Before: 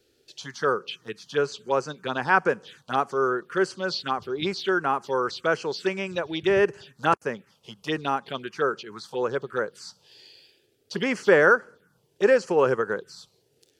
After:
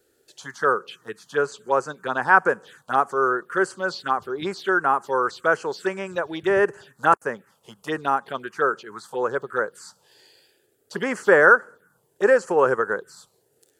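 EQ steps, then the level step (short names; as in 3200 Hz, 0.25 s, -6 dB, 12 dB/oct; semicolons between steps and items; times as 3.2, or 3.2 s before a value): low shelf 440 Hz -10.5 dB; band shelf 3600 Hz -11.5 dB; +6.5 dB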